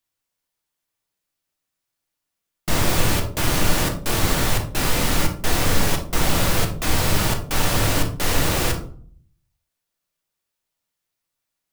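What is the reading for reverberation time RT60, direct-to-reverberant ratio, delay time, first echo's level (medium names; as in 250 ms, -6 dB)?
0.50 s, 3.0 dB, no echo, no echo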